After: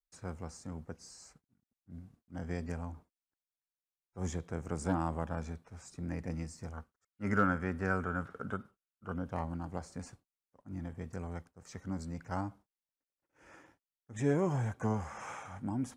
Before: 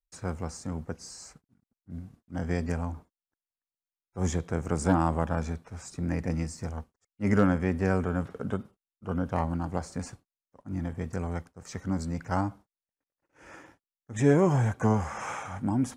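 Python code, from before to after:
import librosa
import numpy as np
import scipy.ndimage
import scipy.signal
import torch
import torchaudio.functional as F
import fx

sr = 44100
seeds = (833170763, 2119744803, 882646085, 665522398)

y = fx.peak_eq(x, sr, hz=1400.0, db=12.5, octaves=0.51, at=(6.73, 9.12))
y = y * 10.0 ** (-8.5 / 20.0)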